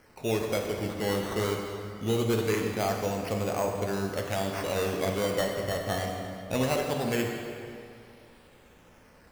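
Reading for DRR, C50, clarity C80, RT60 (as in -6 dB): 1.0 dB, 3.0 dB, 4.0 dB, 2.6 s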